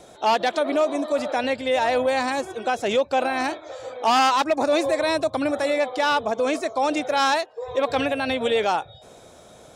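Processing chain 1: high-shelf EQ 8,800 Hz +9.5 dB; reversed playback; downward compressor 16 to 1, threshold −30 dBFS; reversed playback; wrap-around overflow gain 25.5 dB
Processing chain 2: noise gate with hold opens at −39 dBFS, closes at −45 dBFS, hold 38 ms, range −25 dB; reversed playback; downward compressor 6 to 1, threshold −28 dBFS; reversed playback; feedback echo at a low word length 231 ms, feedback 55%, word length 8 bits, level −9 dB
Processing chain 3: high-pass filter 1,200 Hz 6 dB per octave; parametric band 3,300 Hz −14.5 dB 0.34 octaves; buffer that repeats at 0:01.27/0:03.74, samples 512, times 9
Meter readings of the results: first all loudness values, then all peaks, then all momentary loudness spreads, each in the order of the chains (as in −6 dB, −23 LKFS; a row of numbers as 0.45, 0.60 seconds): −34.0, −31.0, −28.5 LKFS; −25.5, −17.0, −13.0 dBFS; 4, 4, 7 LU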